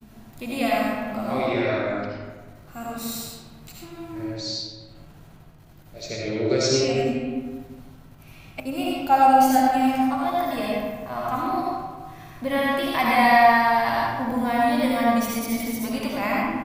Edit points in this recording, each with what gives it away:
8.60 s: sound stops dead

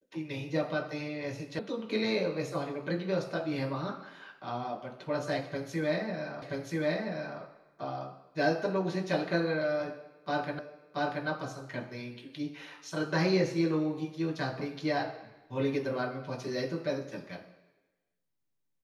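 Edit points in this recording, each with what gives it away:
1.59 s: sound stops dead
6.42 s: repeat of the last 0.98 s
10.59 s: repeat of the last 0.68 s

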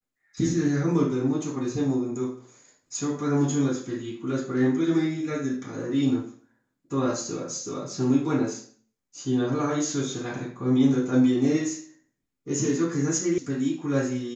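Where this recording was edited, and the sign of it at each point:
13.38 s: sound stops dead

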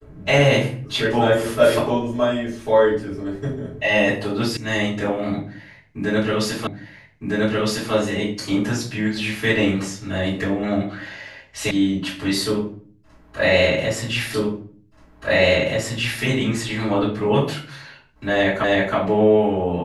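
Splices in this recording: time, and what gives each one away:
4.57 s: sound stops dead
6.67 s: repeat of the last 1.26 s
11.71 s: sound stops dead
14.34 s: repeat of the last 1.88 s
18.64 s: repeat of the last 0.32 s

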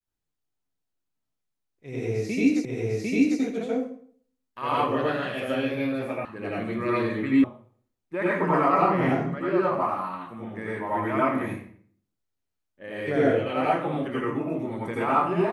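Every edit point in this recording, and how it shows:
2.65 s: repeat of the last 0.75 s
6.25 s: sound stops dead
7.44 s: sound stops dead

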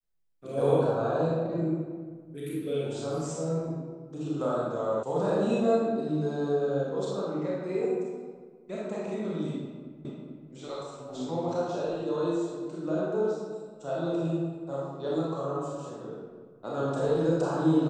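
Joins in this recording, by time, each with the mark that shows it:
5.03 s: sound stops dead
10.05 s: repeat of the last 0.44 s

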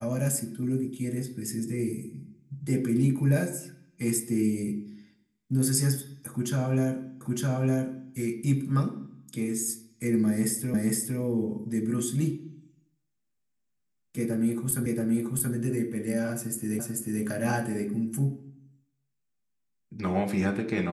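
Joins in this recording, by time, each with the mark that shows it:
7.21 s: repeat of the last 0.91 s
10.74 s: repeat of the last 0.46 s
14.86 s: repeat of the last 0.68 s
16.79 s: repeat of the last 0.44 s

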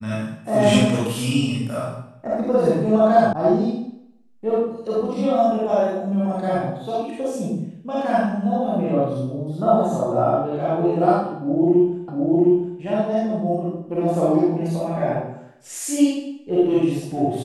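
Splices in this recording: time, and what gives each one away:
3.33 s: sound stops dead
12.08 s: repeat of the last 0.71 s

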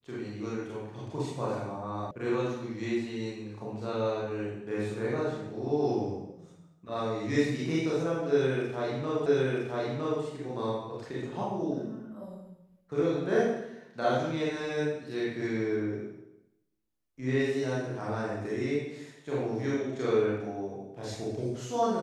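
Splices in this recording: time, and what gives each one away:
2.11 s: sound stops dead
9.26 s: repeat of the last 0.96 s

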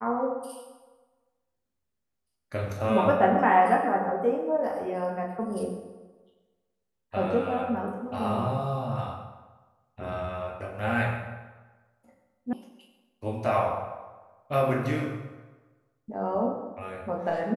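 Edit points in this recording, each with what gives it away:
12.53 s: sound stops dead

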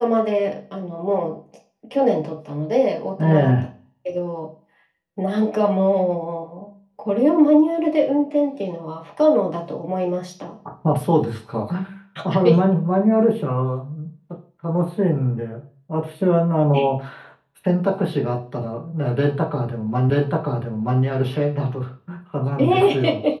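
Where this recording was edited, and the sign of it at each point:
20.10 s: repeat of the last 0.93 s

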